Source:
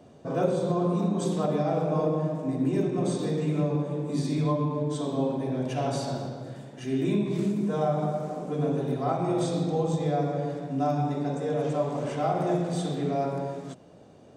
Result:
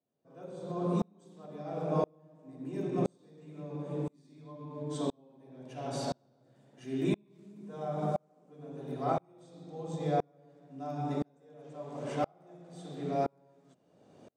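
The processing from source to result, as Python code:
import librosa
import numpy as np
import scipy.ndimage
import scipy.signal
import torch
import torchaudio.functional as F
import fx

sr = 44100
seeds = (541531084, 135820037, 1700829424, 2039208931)

y = scipy.signal.sosfilt(scipy.signal.butter(2, 120.0, 'highpass', fs=sr, output='sos'), x)
y = fx.tremolo_decay(y, sr, direction='swelling', hz=0.98, depth_db=38)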